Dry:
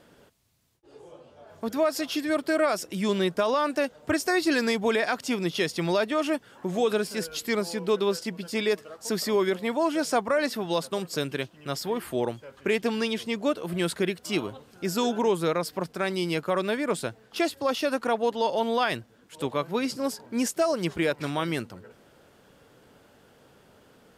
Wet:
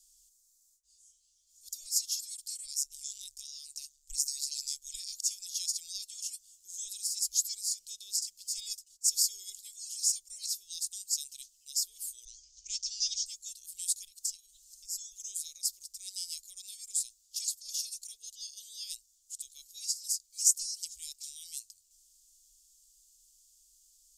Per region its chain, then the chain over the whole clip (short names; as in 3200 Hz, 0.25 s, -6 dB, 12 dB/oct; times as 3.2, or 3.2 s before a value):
2.66–4.94 ring modulator 71 Hz + mismatched tape noise reduction decoder only
8.57–9.57 comb 2.4 ms, depth 60% + gate -43 dBFS, range -15 dB
12.25–13.26 Chebyshev low-pass 6100 Hz, order 4 + tone controls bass +13 dB, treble +12 dB
14.06–15.12 comb 5 ms, depth 93% + compressor, threshold -35 dBFS
whole clip: inverse Chebyshev band-stop 110–1700 Hz, stop band 60 dB; bell 7100 Hz +9.5 dB 0.69 oct; gain +2.5 dB